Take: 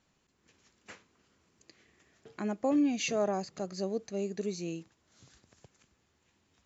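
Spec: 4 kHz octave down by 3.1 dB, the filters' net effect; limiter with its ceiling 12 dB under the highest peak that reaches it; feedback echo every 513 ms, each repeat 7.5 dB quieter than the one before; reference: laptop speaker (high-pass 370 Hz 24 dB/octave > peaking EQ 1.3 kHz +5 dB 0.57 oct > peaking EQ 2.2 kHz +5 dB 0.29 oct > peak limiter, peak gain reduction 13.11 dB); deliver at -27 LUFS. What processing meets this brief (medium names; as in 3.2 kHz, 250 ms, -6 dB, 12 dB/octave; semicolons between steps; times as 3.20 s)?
peaking EQ 4 kHz -5 dB; peak limiter -31 dBFS; high-pass 370 Hz 24 dB/octave; peaking EQ 1.3 kHz +5 dB 0.57 oct; peaking EQ 2.2 kHz +5 dB 0.29 oct; feedback delay 513 ms, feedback 42%, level -7.5 dB; trim +24 dB; peak limiter -17 dBFS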